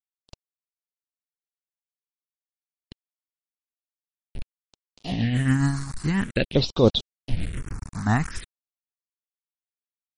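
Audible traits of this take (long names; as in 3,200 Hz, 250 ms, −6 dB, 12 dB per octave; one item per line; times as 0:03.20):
a quantiser's noise floor 6 bits, dither none
phaser sweep stages 4, 0.47 Hz, lowest notch 490–1,900 Hz
tremolo triangle 7.3 Hz, depth 50%
MP3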